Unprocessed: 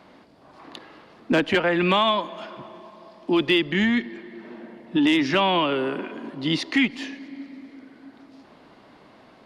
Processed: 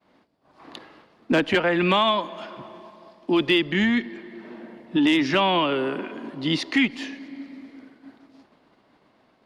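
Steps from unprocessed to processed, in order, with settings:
downward expander −43 dBFS

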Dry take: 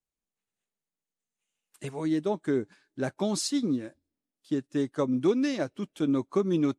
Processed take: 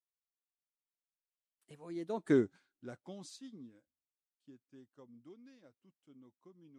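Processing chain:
source passing by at 0:02.34, 25 m/s, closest 1.9 metres

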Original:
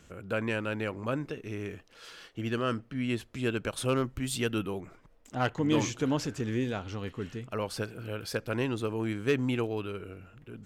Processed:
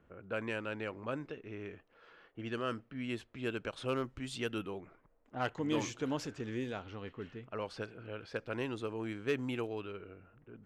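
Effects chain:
low-pass that shuts in the quiet parts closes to 1,300 Hz, open at −25 dBFS
bass and treble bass −5 dB, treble −2 dB
level −5.5 dB

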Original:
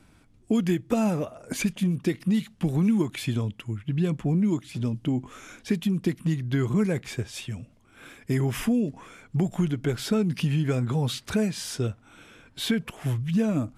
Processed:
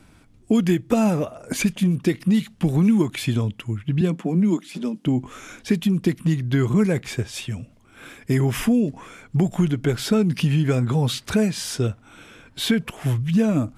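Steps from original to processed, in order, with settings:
0:04.01–0:05.06: elliptic high-pass filter 170 Hz, stop band 40 dB
level +5 dB

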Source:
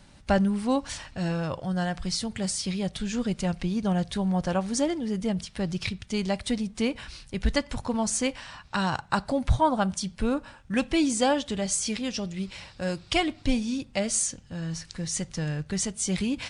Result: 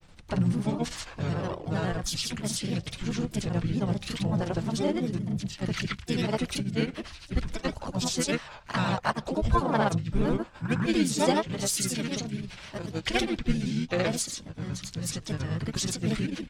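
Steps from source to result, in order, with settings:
granular cloud, grains 27 per second, pitch spread up and down by 3 semitones
pitch-shifted copies added −7 semitones −3 dB, +7 semitones −16 dB

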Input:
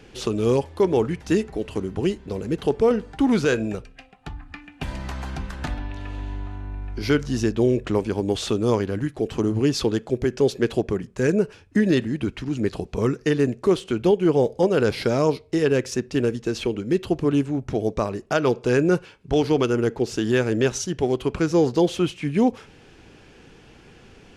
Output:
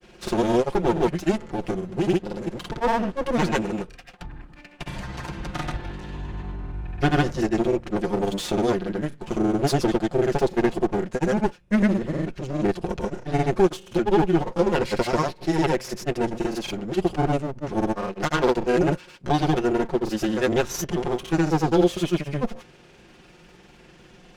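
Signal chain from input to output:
lower of the sound and its delayed copy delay 5.6 ms
granular cloud, pitch spread up and down by 0 semitones
level +1.5 dB

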